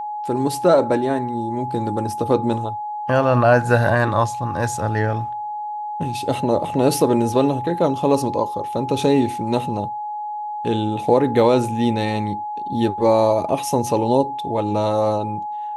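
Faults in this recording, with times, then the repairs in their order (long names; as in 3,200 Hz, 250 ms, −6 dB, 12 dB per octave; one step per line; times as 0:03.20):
whistle 840 Hz −25 dBFS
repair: notch filter 840 Hz, Q 30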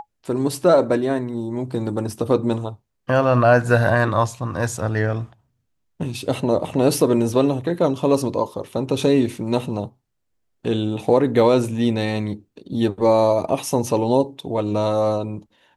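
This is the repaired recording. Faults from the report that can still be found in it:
none of them is left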